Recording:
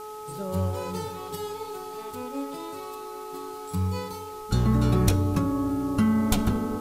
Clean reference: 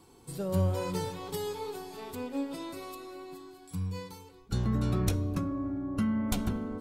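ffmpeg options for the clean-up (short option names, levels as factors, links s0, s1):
-af "bandreject=f=426.7:t=h:w=4,bandreject=f=853.4:t=h:w=4,bandreject=f=1280.1:t=h:w=4,afwtdn=0.0028,asetnsamples=n=441:p=0,asendcmd='3.34 volume volume -7dB',volume=1"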